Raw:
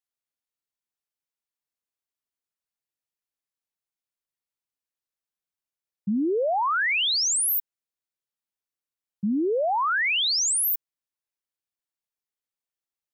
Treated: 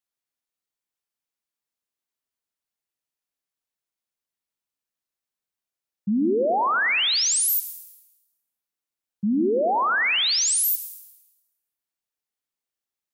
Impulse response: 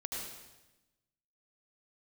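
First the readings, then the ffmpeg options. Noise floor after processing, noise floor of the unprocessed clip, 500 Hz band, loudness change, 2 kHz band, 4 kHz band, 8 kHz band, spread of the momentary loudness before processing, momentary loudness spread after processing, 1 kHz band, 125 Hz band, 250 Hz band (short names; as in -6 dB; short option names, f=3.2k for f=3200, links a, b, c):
under -85 dBFS, under -85 dBFS, +2.5 dB, +2.0 dB, +2.0 dB, +2.0 dB, +2.0 dB, 8 LU, 12 LU, +2.0 dB, +2.5 dB, +3.0 dB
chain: -filter_complex "[0:a]asplit=2[a][b];[b]lowshelf=f=170:t=q:w=3:g=-6[c];[1:a]atrim=start_sample=2205[d];[c][d]afir=irnorm=-1:irlink=0,volume=-9.5dB[e];[a][e]amix=inputs=2:normalize=0"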